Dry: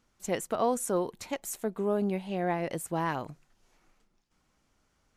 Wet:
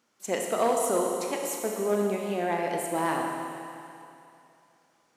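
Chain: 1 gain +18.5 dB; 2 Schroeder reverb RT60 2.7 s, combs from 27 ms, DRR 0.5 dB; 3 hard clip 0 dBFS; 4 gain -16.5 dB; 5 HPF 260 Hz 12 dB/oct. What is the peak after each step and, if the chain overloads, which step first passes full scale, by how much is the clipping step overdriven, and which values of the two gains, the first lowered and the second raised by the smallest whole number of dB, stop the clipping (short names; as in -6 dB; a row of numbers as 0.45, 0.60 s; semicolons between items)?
+3.0, +5.5, 0.0, -16.5, -12.5 dBFS; step 1, 5.5 dB; step 1 +12.5 dB, step 4 -10.5 dB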